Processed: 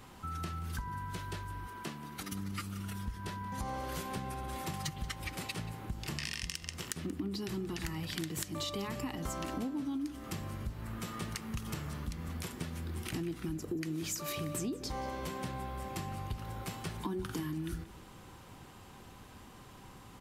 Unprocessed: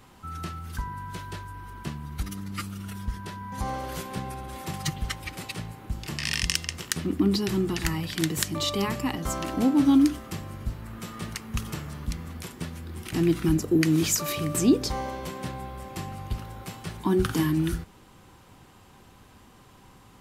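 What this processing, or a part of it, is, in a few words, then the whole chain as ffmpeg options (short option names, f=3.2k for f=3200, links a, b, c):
serial compression, peaks first: -filter_complex "[0:a]asettb=1/sr,asplit=3[a][b][c];[a]atrim=end=1.674[d];[b]atrim=start=1.67:end=2.32,asetpts=PTS-STARTPTS,afade=t=in:d=0.004:c=qsin,afade=t=out:st=0.646:d=0.004:c=qsin,highpass=250[e];[c]atrim=start=2.316[f];[d][e]acrossfade=d=0.004:c1=hsin:c2=qsin[g];[g][f]acrossfade=d=0.004:c1=qsin:c2=hsin,acompressor=threshold=-31dB:ratio=6,acompressor=threshold=-40dB:ratio=1.5,asplit=2[h][i];[i]adelay=180.8,volume=-16dB,highshelf=f=4k:g=-4.07[j];[h][j]amix=inputs=2:normalize=0"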